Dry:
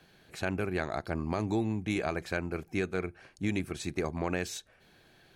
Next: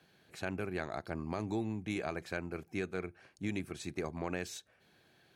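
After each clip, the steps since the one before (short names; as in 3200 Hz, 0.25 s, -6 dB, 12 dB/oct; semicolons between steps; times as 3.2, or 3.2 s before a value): HPF 78 Hz; gain -5.5 dB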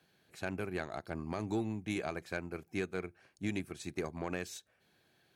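soft clip -23.5 dBFS, distortion -23 dB; high shelf 7500 Hz +5 dB; upward expander 1.5:1, over -47 dBFS; gain +2.5 dB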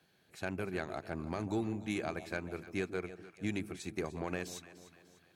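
echo with dull and thin repeats by turns 0.149 s, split 850 Hz, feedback 66%, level -11.5 dB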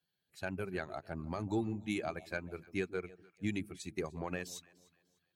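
per-bin expansion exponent 1.5; gain +2 dB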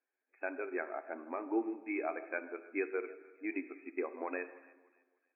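brick-wall FIR band-pass 250–2600 Hz; plate-style reverb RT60 1.2 s, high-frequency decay 0.75×, DRR 10.5 dB; gain +1.5 dB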